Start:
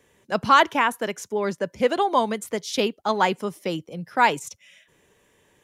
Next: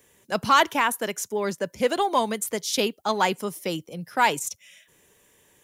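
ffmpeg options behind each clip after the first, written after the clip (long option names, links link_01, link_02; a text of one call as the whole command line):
ffmpeg -i in.wav -af "aemphasis=mode=production:type=50kf,acontrast=35,volume=-7dB" out.wav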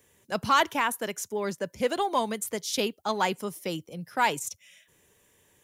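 ffmpeg -i in.wav -af "equalizer=frequency=87:width_type=o:width=1.2:gain=5,volume=-4dB" out.wav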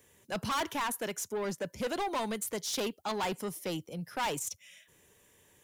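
ffmpeg -i in.wav -af "asoftclip=type=tanh:threshold=-29dB" out.wav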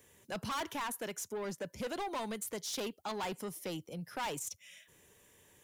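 ffmpeg -i in.wav -af "acompressor=threshold=-45dB:ratio=1.5" out.wav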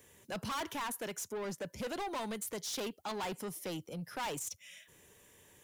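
ffmpeg -i in.wav -af "asoftclip=type=tanh:threshold=-35.5dB,volume=2dB" out.wav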